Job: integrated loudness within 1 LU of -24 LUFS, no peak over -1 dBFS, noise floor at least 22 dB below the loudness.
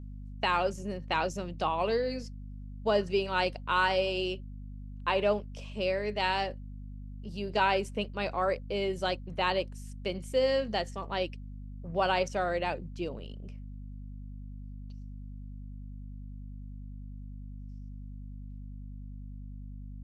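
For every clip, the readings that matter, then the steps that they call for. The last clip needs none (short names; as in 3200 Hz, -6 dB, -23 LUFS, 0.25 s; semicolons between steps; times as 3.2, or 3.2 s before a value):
hum 50 Hz; harmonics up to 250 Hz; hum level -40 dBFS; loudness -31.0 LUFS; peak -13.0 dBFS; loudness target -24.0 LUFS
-> notches 50/100/150/200/250 Hz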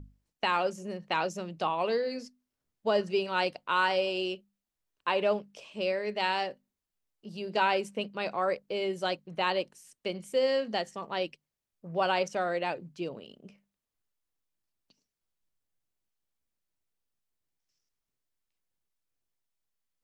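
hum none; loudness -31.0 LUFS; peak -13.5 dBFS; loudness target -24.0 LUFS
-> gain +7 dB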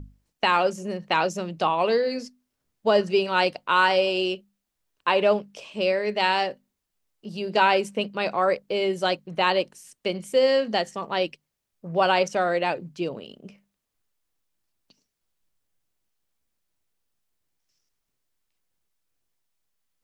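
loudness -24.0 LUFS; peak -6.5 dBFS; noise floor -81 dBFS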